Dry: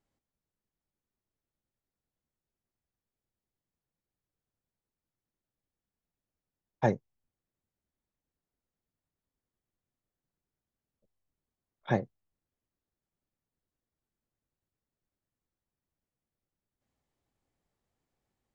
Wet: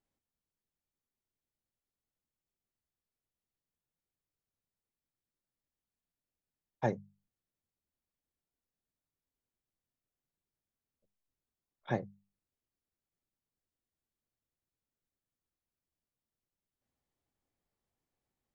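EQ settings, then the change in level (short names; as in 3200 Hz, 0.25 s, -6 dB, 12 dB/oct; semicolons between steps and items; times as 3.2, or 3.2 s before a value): notches 50/100/150/200 Hz; -5.0 dB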